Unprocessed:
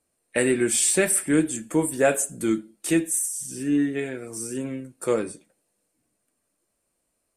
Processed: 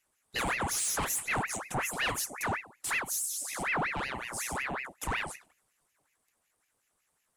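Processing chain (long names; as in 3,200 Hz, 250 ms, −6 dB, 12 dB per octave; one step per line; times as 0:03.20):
in parallel at +2.5 dB: downward compressor, threshold −29 dBFS, peak gain reduction 14 dB
on the sum: soft clipping −18 dBFS, distortion −10 dB
ring modulator whose carrier an LFO sweeps 1,400 Hz, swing 70%, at 5.4 Hz
level −6 dB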